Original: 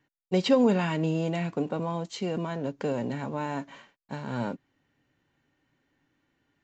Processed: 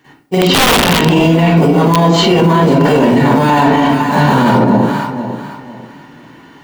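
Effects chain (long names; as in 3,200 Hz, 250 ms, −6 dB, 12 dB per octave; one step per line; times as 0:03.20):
high-pass filter 280 Hz 6 dB per octave
parametric band 540 Hz −8 dB 0.25 octaves
in parallel at −9 dB: sample-rate reduction 2,700 Hz, jitter 0%
on the sum: delay that swaps between a low-pass and a high-pass 249 ms, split 880 Hz, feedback 53%, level −10 dB
convolution reverb RT60 0.65 s, pre-delay 41 ms, DRR −14 dB
wrap-around overflow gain 3.5 dB
reversed playback
downward compressor 6 to 1, threshold −19 dBFS, peak gain reduction 11.5 dB
reversed playback
dynamic equaliser 3,200 Hz, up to +6 dB, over −40 dBFS, Q 1.9
boost into a limiter +20.5 dB
level −1 dB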